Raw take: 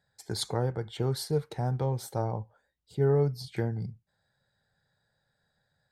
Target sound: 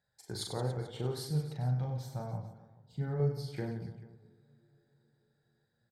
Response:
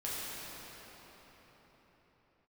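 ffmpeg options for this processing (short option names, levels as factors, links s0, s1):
-filter_complex "[0:a]asettb=1/sr,asplit=3[s0][s1][s2];[s0]atrim=end=1.254[s3];[s1]atrim=start=1.25:end=3.2,asetpts=PTS-STARTPTS,afade=t=in:d=0.004:c=qsin,afade=t=out:st=1.946:d=0.004:c=qsin,equalizer=f=160:t=o:w=0.67:g=6,equalizer=f=400:t=o:w=0.67:g=-12,equalizer=f=1000:t=o:w=0.67:g=-5,equalizer=f=10000:t=o:w=0.67:g=-12[s4];[s2]atrim=start=3.196[s5];[s3][s4]acrossfade=d=0.004:c1=hsin:c2=qsin[s6];[s6][s5]acrossfade=d=0.004:c1=qsin:c2=hsin,aecho=1:1:40|96|174.4|284.2|437.8:0.631|0.398|0.251|0.158|0.1,asplit=2[s7][s8];[1:a]atrim=start_sample=2205,lowpass=2600[s9];[s8][s9]afir=irnorm=-1:irlink=0,volume=0.0422[s10];[s7][s10]amix=inputs=2:normalize=0,volume=0.398"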